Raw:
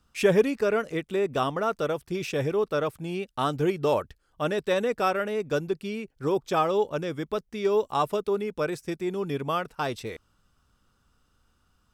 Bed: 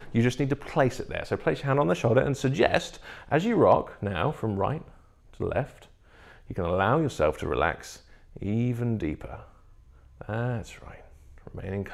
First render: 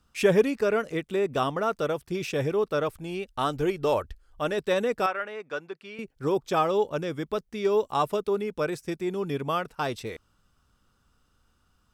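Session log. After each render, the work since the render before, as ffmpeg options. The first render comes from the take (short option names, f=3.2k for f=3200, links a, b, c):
-filter_complex "[0:a]asplit=3[a][b][c];[a]afade=t=out:st=2.87:d=0.02[d];[b]asubboost=boost=8:cutoff=55,afade=t=in:st=2.87:d=0.02,afade=t=out:st=4.56:d=0.02[e];[c]afade=t=in:st=4.56:d=0.02[f];[d][e][f]amix=inputs=3:normalize=0,asettb=1/sr,asplit=3[g][h][i];[g]atrim=end=5.064[j];[h]atrim=start=5.06:end=5.99,asetpts=PTS-STARTPTS,afade=t=in:d=0.004:c=qsin,afade=t=out:st=0.926:d=0.004:c=qsin,bandpass=f=1.5k:t=q:w=0.84[k];[i]atrim=start=5.986[l];[j][k]acrossfade=d=0.004:c1=hsin:c2=qsin[m];[m][l]acrossfade=d=0.004:c1=qsin:c2=hsin"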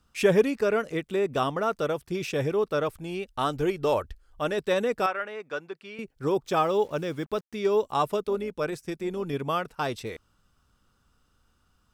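-filter_complex "[0:a]asettb=1/sr,asplit=3[a][b][c];[a]atrim=end=6.464[d];[b]atrim=start=6.46:end=7.55,asetpts=PTS-STARTPTS,afade=t=in:d=0.004:c=qsin,afade=t=out:st=1.086:d=0.004:c=qsin,acrusher=bits=8:mix=0:aa=0.5[e];[c]atrim=start=7.546[f];[d][e]acrossfade=d=0.004:c1=hsin:c2=qsin[g];[g][f]acrossfade=d=0.004:c1=qsin:c2=hsin,asettb=1/sr,asplit=3[h][i][j];[h]atrim=end=8.264[k];[i]atrim=start=8.26:end=9.33,asetpts=PTS-STARTPTS,afade=t=in:d=0.004:c=qsin,afade=t=out:st=1.066:d=0.004:c=qsin,tremolo=f=160:d=0.333[l];[j]atrim=start=9.326[m];[k][l]acrossfade=d=0.004:c1=hsin:c2=qsin[n];[n][m]acrossfade=d=0.004:c1=qsin:c2=hsin"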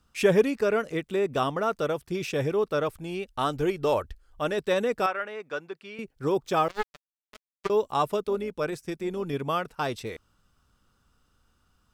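-filter_complex "[0:a]asettb=1/sr,asplit=3[a][b][c];[a]atrim=end=6.684[d];[b]atrim=start=6.68:end=7.7,asetpts=PTS-STARTPTS,afade=t=in:d=0.004:c=qsin,afade=t=out:st=1.016:d=0.004:c=qsin,acrusher=bits=2:mix=0:aa=0.5[e];[c]atrim=start=7.696[f];[d][e]acrossfade=d=0.004:c1=hsin:c2=qsin[g];[g][f]acrossfade=d=0.004:c1=qsin:c2=hsin"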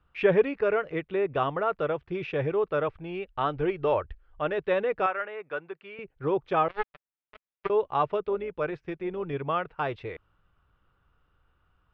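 -af "lowpass=f=2.8k:w=0.5412,lowpass=f=2.8k:w=1.3066,equalizer=f=230:w=3.7:g=-13"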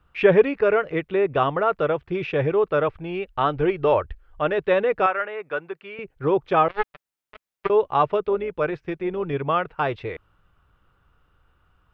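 -af "volume=6dB"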